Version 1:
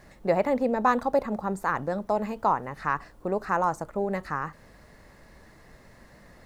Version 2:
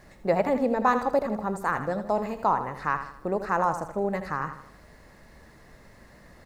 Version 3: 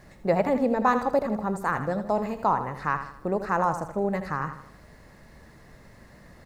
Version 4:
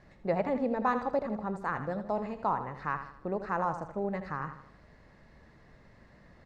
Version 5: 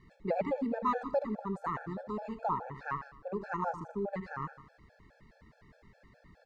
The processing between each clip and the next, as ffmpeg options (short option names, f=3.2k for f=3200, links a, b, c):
-af "aecho=1:1:80|160|240|320|400:0.316|0.136|0.0585|0.0251|0.0108"
-af "equalizer=f=130:t=o:w=1.6:g=4"
-af "lowpass=4.5k,volume=-6.5dB"
-af "afftfilt=real='re*gt(sin(2*PI*4.8*pts/sr)*(1-2*mod(floor(b*sr/1024/450),2)),0)':imag='im*gt(sin(2*PI*4.8*pts/sr)*(1-2*mod(floor(b*sr/1024/450),2)),0)':win_size=1024:overlap=0.75"